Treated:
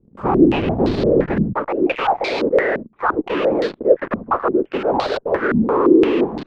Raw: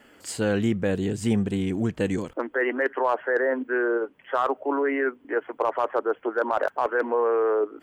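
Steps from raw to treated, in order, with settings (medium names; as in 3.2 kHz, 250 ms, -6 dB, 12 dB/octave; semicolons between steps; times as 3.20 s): gliding tape speed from 162% -> 80%; Butterworth band-stop 670 Hz, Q 5.5; tilt EQ -3.5 dB/octave; whisper effect; in parallel at -10.5 dB: fuzz box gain 47 dB, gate -44 dBFS; on the sum: step-sequenced low-pass 5.8 Hz 220–4200 Hz; trim -3.5 dB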